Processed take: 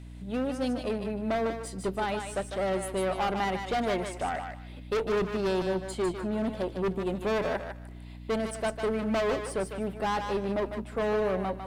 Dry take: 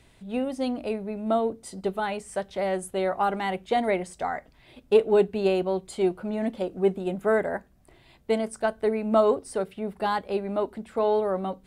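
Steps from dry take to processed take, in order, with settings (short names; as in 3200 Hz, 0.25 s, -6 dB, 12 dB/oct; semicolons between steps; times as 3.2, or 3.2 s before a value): tube stage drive 23 dB, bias 0.45; one-sided clip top -27.5 dBFS, bottom -25 dBFS; hum 60 Hz, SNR 13 dB; on a send: thinning echo 0.151 s, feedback 23%, high-pass 700 Hz, level -5 dB; on the sum: gain +1 dB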